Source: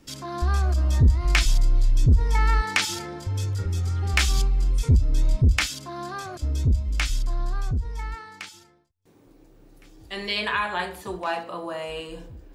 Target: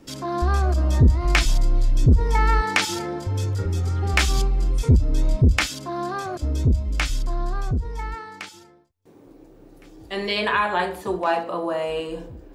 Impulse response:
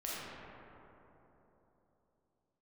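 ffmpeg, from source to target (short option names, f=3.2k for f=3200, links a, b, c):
-af "equalizer=f=440:w=0.39:g=8"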